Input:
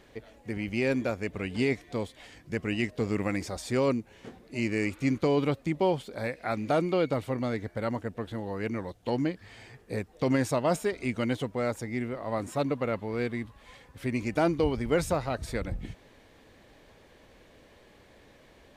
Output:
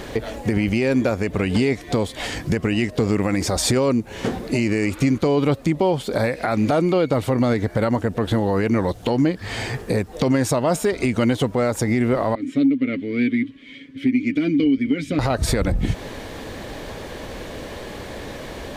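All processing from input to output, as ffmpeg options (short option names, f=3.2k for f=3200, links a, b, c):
-filter_complex "[0:a]asettb=1/sr,asplit=3[a][b][c];[a]atrim=end=12.354[d];[b]atrim=start=12.35:end=15.19,asetpts=PTS-STARTPTS,afade=t=in:d=0.004:c=qsin,afade=t=out:st=2.836:d=0.004:c=qsin,asplit=3[e][f][g];[e]bandpass=f=270:t=q:w=8,volume=0dB[h];[f]bandpass=f=2.29k:t=q:w=8,volume=-6dB[i];[g]bandpass=f=3.01k:t=q:w=8,volume=-9dB[j];[h][i][j]amix=inputs=3:normalize=0,aecho=1:1:7.1:0.48,atrim=end_sample=125244[k];[c]atrim=start=15.186[l];[d][k]acrossfade=d=0.004:c1=hsin:c2=qsin[m];[m][l]acrossfade=d=0.004:c1=qsin:c2=hsin,equalizer=f=2.3k:w=1.4:g=-3,acompressor=threshold=-38dB:ratio=6,alimiter=level_in=32.5dB:limit=-1dB:release=50:level=0:latency=1,volume=-9dB"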